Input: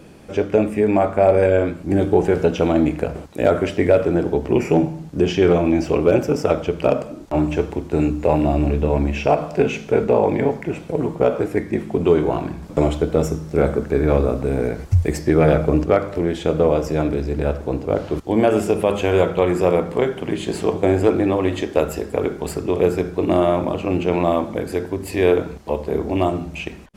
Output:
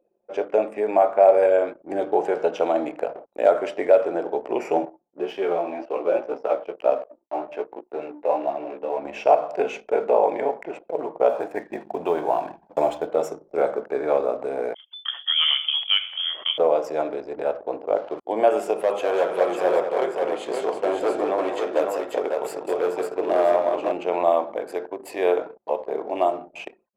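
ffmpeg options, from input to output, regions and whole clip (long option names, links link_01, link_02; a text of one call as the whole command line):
ffmpeg -i in.wav -filter_complex "[0:a]asettb=1/sr,asplit=3[link_01][link_02][link_03];[link_01]atrim=end=4.854[link_04];[link_02]atrim=start=4.85:end=9.05,asetpts=PTS-STARTPTS,afade=type=in:duration=0.004:curve=qsin,afade=type=out:start_time=4.196:duration=0.004:curve=qsin,highpass=140,lowpass=4000,aeval=exprs='sgn(val(0))*max(abs(val(0))-0.00891,0)':channel_layout=same,flanger=delay=15:depth=2.5:speed=1.9[link_05];[link_03]atrim=start=9.046[link_06];[link_04][link_05]acrossfade=duration=0.004:curve1=hsin:curve2=qsin[link_07];[link_07][link_06]acrossfade=duration=0.004:curve1=qsin:curve2=hsin,asettb=1/sr,asplit=3[link_08][link_09][link_10];[link_08]atrim=end=11.294[link_11];[link_09]atrim=start=11.29:end=13.07,asetpts=PTS-STARTPTS,afade=type=in:duration=0.004:curve=qsin,afade=type=out:start_time=1.776:duration=0.004:curve=qsin,lowshelf=frequency=350:gain=3,aecho=1:1:1.2:0.36,atrim=end_sample=78498,acrusher=bits=6:mix=0:aa=0.5[link_12];[link_10]atrim=start=13.066[link_13];[link_11][link_12]acrossfade=duration=0.004:curve1=hsin:curve2=qsin[link_14];[link_14][link_13]acrossfade=duration=0.004:curve1=qsin:curve2=hsin,asettb=1/sr,asplit=3[link_15][link_16][link_17];[link_15]atrim=end=14.744[link_18];[link_16]atrim=start=14.74:end=16.58,asetpts=PTS-STARTPTS,afade=type=in:duration=0.004:curve=qsin,afade=type=out:start_time=1.836:duration=0.004:curve=qsin,highpass=270,lowpass=frequency=3100:width_type=q:width=0.5098,lowpass=frequency=3100:width_type=q:width=0.6013,lowpass=frequency=3100:width_type=q:width=0.9,lowpass=frequency=3100:width_type=q:width=2.563,afreqshift=-3600,adynamicequalizer=threshold=0.0398:dfrequency=2200:dqfactor=0.7:tfrequency=2200:tqfactor=0.7:attack=5:release=100:ratio=0.375:range=1.5:mode=boostabove:tftype=highshelf[link_19];[link_17]atrim=start=16.576[link_20];[link_18][link_19]acrossfade=duration=0.004:curve1=hsin:curve2=qsin[link_21];[link_21][link_20]acrossfade=duration=0.004:curve1=qsin:curve2=hsin,asettb=1/sr,asplit=3[link_22][link_23][link_24];[link_22]atrim=end=18.754[link_25];[link_23]atrim=start=18.75:end=23.92,asetpts=PTS-STARTPTS,afade=type=in:duration=0.004:curve=qsin,afade=type=out:start_time=5.166:duration=0.004:curve=qsin,asoftclip=type=hard:threshold=-12dB,aecho=1:1:193|548:0.398|0.596,atrim=end_sample=227997[link_26];[link_24]atrim=start=23.916[link_27];[link_25][link_26]acrossfade=duration=0.004:curve1=hsin:curve2=qsin[link_28];[link_28][link_27]acrossfade=duration=0.004:curve1=qsin:curve2=hsin,highpass=440,anlmdn=1.58,equalizer=frequency=690:width_type=o:width=1.5:gain=10.5,volume=-8dB" out.wav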